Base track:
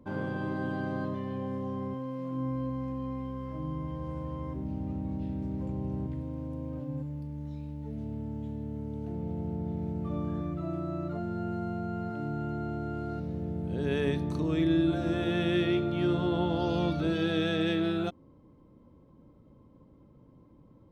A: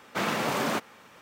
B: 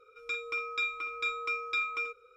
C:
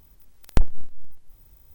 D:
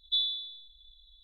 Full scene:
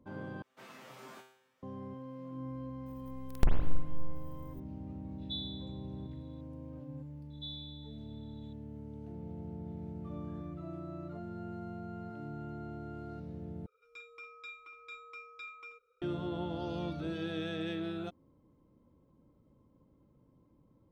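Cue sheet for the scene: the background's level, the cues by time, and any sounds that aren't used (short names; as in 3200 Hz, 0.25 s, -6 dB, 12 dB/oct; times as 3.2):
base track -9 dB
0.42 replace with A -10.5 dB + resonator 130 Hz, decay 0.67 s, mix 90%
2.86 add C -9.5 dB + spring tank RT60 1.1 s, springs 40/46/54 ms, chirp 60 ms, DRR -0.5 dB
5.18 add D -18 dB + high shelf 2400 Hz +8.5 dB
7.3 add D -6 dB + compressor 1.5:1, threshold -54 dBFS
13.66 replace with B -16 dB + bell 820 Hz +5 dB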